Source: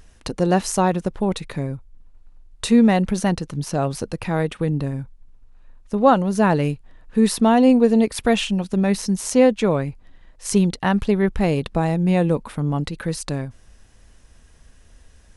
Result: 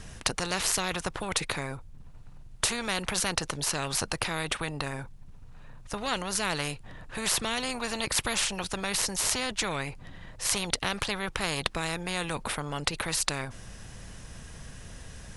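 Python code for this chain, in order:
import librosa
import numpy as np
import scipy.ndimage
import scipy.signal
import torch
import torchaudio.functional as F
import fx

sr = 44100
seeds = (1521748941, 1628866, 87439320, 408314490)

y = fx.low_shelf_res(x, sr, hz=190.0, db=7.5, q=1.5)
y = fx.spectral_comp(y, sr, ratio=4.0)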